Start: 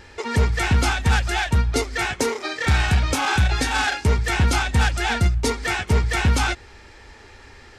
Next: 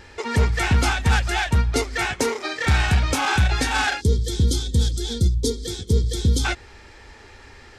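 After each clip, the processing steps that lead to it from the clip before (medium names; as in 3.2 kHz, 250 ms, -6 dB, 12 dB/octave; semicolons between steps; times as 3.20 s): time-frequency box 4.01–6.45 s, 520–3100 Hz -23 dB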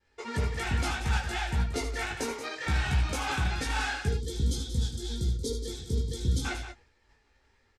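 expander -35 dBFS; loudspeakers at several distances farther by 26 m -9 dB, 62 m -10 dB; chorus voices 6, 0.63 Hz, delay 18 ms, depth 4.9 ms; trim -7.5 dB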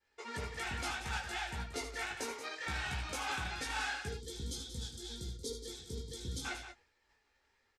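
bass shelf 300 Hz -11 dB; trim -5 dB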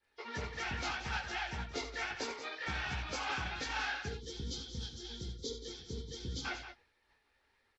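knee-point frequency compression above 2.9 kHz 1.5:1; harmonic-percussive split percussive +4 dB; trim -1 dB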